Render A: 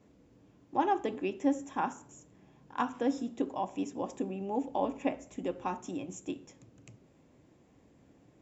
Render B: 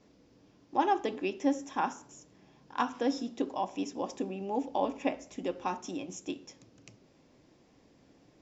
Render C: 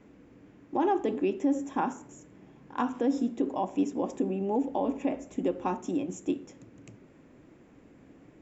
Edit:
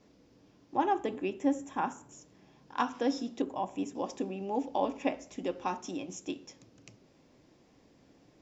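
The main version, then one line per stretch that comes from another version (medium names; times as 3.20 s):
B
0.75–2.12 s: from A
3.42–3.95 s: from A
not used: C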